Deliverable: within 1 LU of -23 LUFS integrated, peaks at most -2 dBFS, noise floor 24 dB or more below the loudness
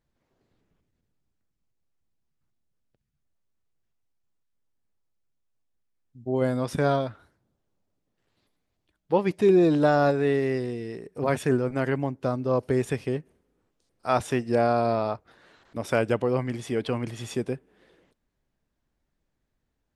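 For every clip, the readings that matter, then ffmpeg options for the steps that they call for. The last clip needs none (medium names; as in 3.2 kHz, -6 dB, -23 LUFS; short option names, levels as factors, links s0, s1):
loudness -25.5 LUFS; peak level -8.5 dBFS; loudness target -23.0 LUFS
-> -af "volume=1.33"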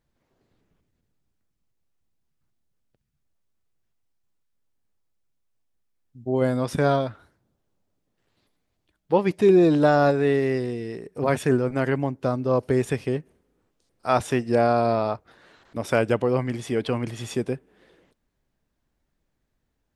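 loudness -23.0 LUFS; peak level -6.0 dBFS; noise floor -76 dBFS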